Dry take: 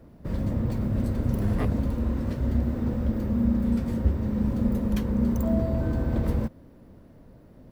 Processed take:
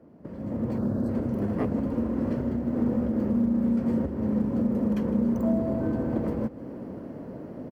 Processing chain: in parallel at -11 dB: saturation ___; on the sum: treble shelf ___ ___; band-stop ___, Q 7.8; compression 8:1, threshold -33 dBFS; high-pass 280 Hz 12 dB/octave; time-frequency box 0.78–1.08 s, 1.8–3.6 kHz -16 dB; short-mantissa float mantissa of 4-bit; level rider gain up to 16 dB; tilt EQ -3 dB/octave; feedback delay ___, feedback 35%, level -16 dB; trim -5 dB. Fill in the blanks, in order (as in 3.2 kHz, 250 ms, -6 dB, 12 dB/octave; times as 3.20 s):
-20 dBFS, 2.2 kHz, -3.5 dB, 3.7 kHz, 158 ms